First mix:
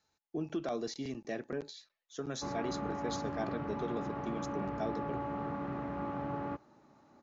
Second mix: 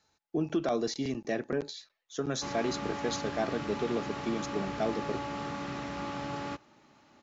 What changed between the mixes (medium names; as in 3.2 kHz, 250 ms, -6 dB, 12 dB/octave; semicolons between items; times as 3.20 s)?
speech +6.5 dB; background: remove low-pass 1.2 kHz 12 dB/octave